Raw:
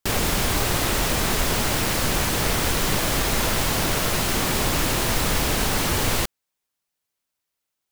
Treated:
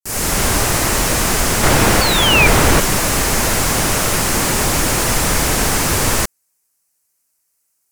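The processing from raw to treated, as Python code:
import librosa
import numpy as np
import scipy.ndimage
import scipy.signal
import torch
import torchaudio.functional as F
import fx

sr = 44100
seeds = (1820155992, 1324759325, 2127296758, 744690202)

p1 = fx.fade_in_head(x, sr, length_s=0.5)
p2 = fx.peak_eq(p1, sr, hz=9200.0, db=14.0, octaves=2.5)
p3 = fx.rider(p2, sr, range_db=10, speed_s=0.5)
p4 = p2 + (p3 * librosa.db_to_amplitude(2.5))
p5 = fx.spec_paint(p4, sr, seeds[0], shape='fall', start_s=2.01, length_s=0.46, low_hz=2300.0, high_hz=4600.0, level_db=-4.0)
p6 = fx.quant_companded(p5, sr, bits=2, at=(1.63, 2.8))
p7 = fx.peak_eq(p6, sr, hz=3500.0, db=-15.0, octaves=0.67)
p8 = fx.slew_limit(p7, sr, full_power_hz=1100.0)
y = p8 * librosa.db_to_amplitude(-2.0)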